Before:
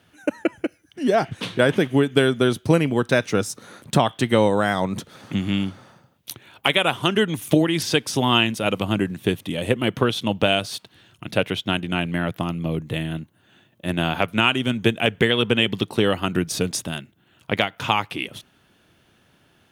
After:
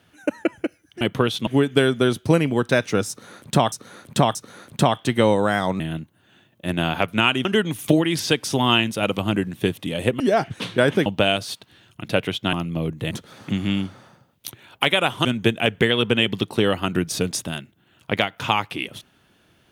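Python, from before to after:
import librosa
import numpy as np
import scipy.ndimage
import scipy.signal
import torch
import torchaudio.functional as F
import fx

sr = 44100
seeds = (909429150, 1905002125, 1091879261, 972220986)

y = fx.edit(x, sr, fx.swap(start_s=1.01, length_s=0.86, other_s=9.83, other_length_s=0.46),
    fx.repeat(start_s=3.49, length_s=0.63, count=3),
    fx.swap(start_s=4.94, length_s=2.14, other_s=13.0, other_length_s=1.65),
    fx.cut(start_s=11.76, length_s=0.66), tone=tone)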